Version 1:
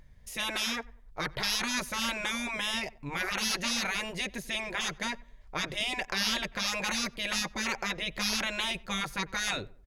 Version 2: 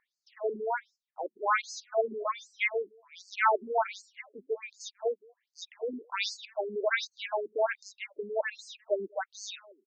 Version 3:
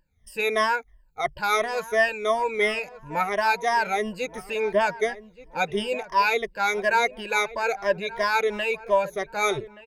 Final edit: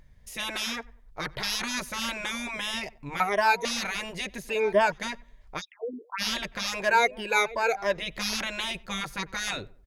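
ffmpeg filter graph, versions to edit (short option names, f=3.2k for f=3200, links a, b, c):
-filter_complex "[2:a]asplit=3[a][b][c];[0:a]asplit=5[d][e][f][g][h];[d]atrim=end=3.202[i];[a]atrim=start=3.198:end=3.652[j];[e]atrim=start=3.648:end=4.492[k];[b]atrim=start=4.488:end=4.922[l];[f]atrim=start=4.918:end=5.62[m];[1:a]atrim=start=5.58:end=6.22[n];[g]atrim=start=6.18:end=6.92[o];[c]atrim=start=6.76:end=8[p];[h]atrim=start=7.84[q];[i][j]acrossfade=d=0.004:c1=hsin:c2=hsin[r];[r][k]acrossfade=d=0.004:c1=hsin:c2=hsin[s];[s][l]acrossfade=d=0.004:c1=hsin:c2=hsin[t];[t][m]acrossfade=d=0.004:c1=hsin:c2=hsin[u];[u][n]acrossfade=d=0.04:c1=tri:c2=tri[v];[v][o]acrossfade=d=0.04:c1=tri:c2=tri[w];[w][p]acrossfade=d=0.16:c1=tri:c2=tri[x];[x][q]acrossfade=d=0.16:c1=tri:c2=tri"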